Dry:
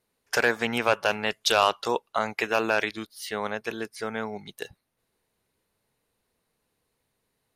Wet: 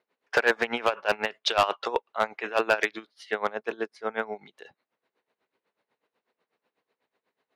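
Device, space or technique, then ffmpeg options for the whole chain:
helicopter radio: -filter_complex "[0:a]highpass=350,lowpass=2.8k,aeval=exprs='val(0)*pow(10,-18*(0.5-0.5*cos(2*PI*8.1*n/s))/20)':c=same,asoftclip=type=hard:threshold=-19.5dB,asettb=1/sr,asplit=3[a][b][c];[a]atrim=end=3.484[d];[b]atrim=start=3.48:end=4.12,asetpts=PTS-STARTPTS,afade=t=in:d=0.004:c=qsin,afade=t=out:st=0.636:d=0.004:c=qsin,equalizer=f=2.2k:w=1:g=-5.5[e];[c]atrim=start=4.116[f];[d][e]acrossfade=d=0.004:c1=hsin:c2=qsin[g];[g][f]acrossfade=d=0.004:c1=qsin:c2=hsin,volume=7dB"

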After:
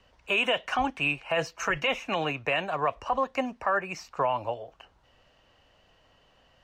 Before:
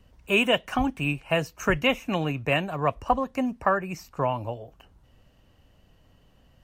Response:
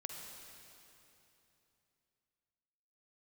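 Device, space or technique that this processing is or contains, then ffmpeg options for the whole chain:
DJ mixer with the lows and highs turned down: -filter_complex "[0:a]asettb=1/sr,asplit=3[a][b][c];[a]atrim=end=1.294[d];[b]atrim=start=1.29:end=1.88,asetpts=PTS-STARTPTS,afade=t=in:d=0.004:c=qsin,afade=t=out:st=0.586:d=0.004:c=qsin,aecho=1:1:6:0.53,atrim=end_sample=26019[e];[c]atrim=start=1.876[f];[d][e]acrossfade=d=0.004:c1=hsin:c2=qsin[g];[g][f]acrossfade=d=0.004:c1=qsin:c2=hsin,acrossover=split=460 6700:gain=0.2 1 0.112[h][i][j];[h][i][j]amix=inputs=3:normalize=0,alimiter=limit=-21dB:level=0:latency=1:release=35,volume=4.5dB"

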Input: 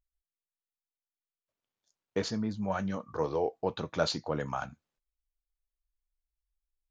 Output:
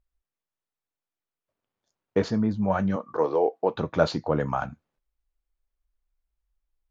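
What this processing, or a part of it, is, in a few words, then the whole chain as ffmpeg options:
through cloth: -filter_complex "[0:a]highshelf=f=3k:g=-15.5,asettb=1/sr,asplit=3[a][b][c];[a]atrim=end=2.964[d];[b]atrim=start=2.96:end=3.75,asetpts=PTS-STARTPTS,afade=t=in:d=0.004:c=qsin,afade=t=out:st=0.786:d=0.004:c=qsin,highpass=280[e];[c]atrim=start=3.746[f];[d][e]acrossfade=d=0.004:c1=hsin:c2=qsin[g];[g][f]acrossfade=d=0.004:c1=qsin:c2=hsin,volume=8.5dB"

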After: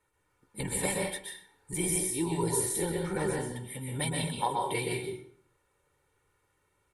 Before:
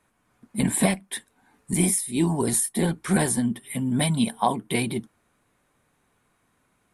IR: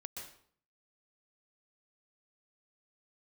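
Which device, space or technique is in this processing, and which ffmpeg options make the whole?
microphone above a desk: -filter_complex "[0:a]asettb=1/sr,asplit=3[a][b][c];[a]atrim=end=2.894[d];[b]atrim=start=2.89:end=3.41,asetpts=PTS-STARTPTS,afade=t=in:d=0.004:c=qsin,afade=t=out:st=0.516:d=0.004:c=qsin,highshelf=f=3.3k:g=-10.5[e];[c]atrim=start=3.406[f];[d][e]acrossfade=d=0.004:c1=hsin:c2=qsin[g];[g][f]acrossfade=d=0.004:c1=qsin:c2=hsin,aecho=1:1:2.2:0.86[h];[1:a]atrim=start_sample=2205[i];[h][i]afir=irnorm=-1:irlink=0,volume=-4dB"

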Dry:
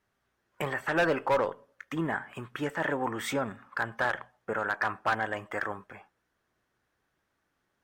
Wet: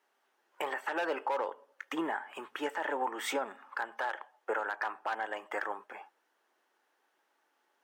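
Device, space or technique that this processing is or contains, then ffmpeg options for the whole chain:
laptop speaker: -filter_complex "[0:a]asettb=1/sr,asplit=3[a][b][c];[a]atrim=end=4.004[d];[b]atrim=start=4:end=4.6,asetpts=PTS-STARTPTS,afade=t=in:d=0.004:c=qsin,afade=t=out:st=0.596:d=0.004:c=qsin,highpass=f=250:w=0.5412,highpass=f=250:w=1.3066[e];[c]atrim=start=4.596[f];[d][e]acrossfade=d=0.004:c1=hsin:c2=qsin[g];[g][f]acrossfade=d=0.004:c1=qsin:c2=hsin,highpass=f=320:w=0.5412,highpass=f=320:w=1.3066,equalizer=f=860:t=o:w=0.27:g=8.5,equalizer=f=2.9k:t=o:w=0.2:g=4,alimiter=level_in=1dB:limit=-24dB:level=0:latency=1:release=442,volume=-1dB,volume=2dB"

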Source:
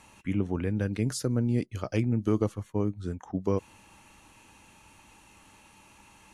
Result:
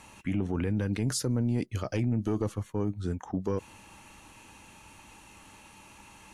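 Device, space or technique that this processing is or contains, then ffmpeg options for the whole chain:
soft clipper into limiter: -af "asoftclip=type=tanh:threshold=-16.5dB,alimiter=limit=-24dB:level=0:latency=1:release=30,volume=3.5dB"

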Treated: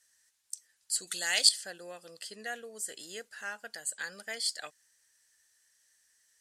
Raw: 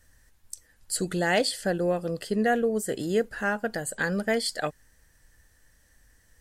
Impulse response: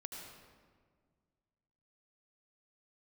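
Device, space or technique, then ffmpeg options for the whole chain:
piezo pickup straight into a mixer: -filter_complex "[0:a]lowpass=7.3k,aderivative,asettb=1/sr,asplit=3[a][b][c];[a]atrim=end=1.074[d];[b]atrim=start=1.07:end=1.49,asetpts=PTS-STARTPTS,afade=t=in:d=0.004:c=qsin,afade=t=out:st=0.416:d=0.004:c=qsin,highshelf=f=2.6k:g=12[e];[c]atrim=start=1.486[f];[d][e]acrossfade=d=0.004:c1=hsin:c2=qsin[g];[g][f]acrossfade=d=0.004:c1=qsin:c2=hsin,volume=3dB"

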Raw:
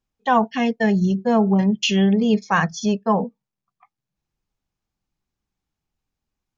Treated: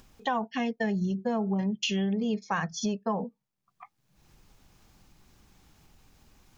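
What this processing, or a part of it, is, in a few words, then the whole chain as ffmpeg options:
upward and downward compression: -af "acompressor=mode=upward:threshold=-39dB:ratio=2.5,acompressor=threshold=-28dB:ratio=4"

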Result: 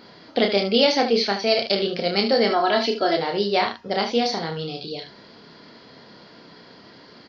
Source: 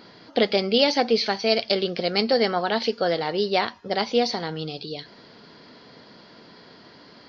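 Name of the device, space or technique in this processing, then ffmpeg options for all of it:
slapback doubling: -filter_complex "[0:a]asplit=3[a][b][c];[b]adelay=30,volume=-5dB[d];[c]adelay=74,volume=-9.5dB[e];[a][d][e]amix=inputs=3:normalize=0,asettb=1/sr,asplit=3[f][g][h];[f]atrim=end=2.504[i];[g]atrim=start=2.5:end=3.17,asetpts=PTS-STARTPTS,afade=t=in:d=0.004:c=qsin,afade=t=out:st=0.666:d=0.004:c=qsin,aecho=1:1:3:0.73,atrim=end_sample=29547[j];[h]atrim=start=3.166[k];[i][j]acrossfade=d=0.004:c1=hsin:c2=qsin[l];[l][k]acrossfade=d=0.004:c1=qsin:c2=hsin"

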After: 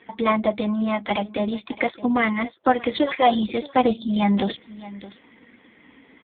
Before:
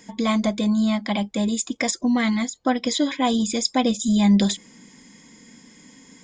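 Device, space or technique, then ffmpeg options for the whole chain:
satellite phone: -filter_complex "[0:a]asettb=1/sr,asplit=3[a][b][c];[a]atrim=end=2.924[d];[b]atrim=start=2.92:end=3.53,asetpts=PTS-STARTPTS,afade=t=in:d=0.004:c=qsin,afade=t=out:st=0.606:d=0.004:c=qsin,aecho=1:1:5.6:0.74,atrim=end_sample=26901[e];[c]atrim=start=3.526[f];[d][e]acrossfade=d=0.004:c1=hsin:c2=qsin[g];[g][f]acrossfade=d=0.004:c1=qsin:c2=hsin,highpass=370,lowpass=3.4k,aecho=1:1:618:0.133,volume=6.5dB" -ar 8000 -c:a libopencore_amrnb -b:a 5900

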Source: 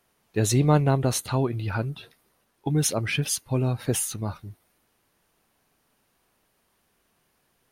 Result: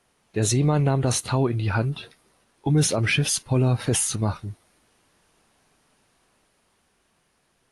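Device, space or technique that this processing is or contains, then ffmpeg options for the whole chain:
low-bitrate web radio: -af "dynaudnorm=f=260:g=13:m=3.5dB,alimiter=limit=-16dB:level=0:latency=1:release=24,volume=3dB" -ar 24000 -c:a aac -b:a 48k

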